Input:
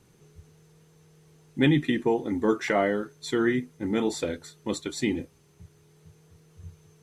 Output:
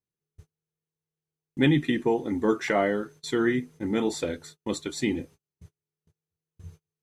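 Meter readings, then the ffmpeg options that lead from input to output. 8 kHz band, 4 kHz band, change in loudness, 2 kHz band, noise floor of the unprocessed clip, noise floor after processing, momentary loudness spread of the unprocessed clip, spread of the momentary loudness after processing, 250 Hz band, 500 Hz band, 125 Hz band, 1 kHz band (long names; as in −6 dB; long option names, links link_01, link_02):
0.0 dB, 0.0 dB, 0.0 dB, 0.0 dB, −60 dBFS, below −85 dBFS, 11 LU, 11 LU, 0.0 dB, 0.0 dB, 0.0 dB, 0.0 dB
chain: -af "agate=range=-35dB:threshold=-47dB:ratio=16:detection=peak"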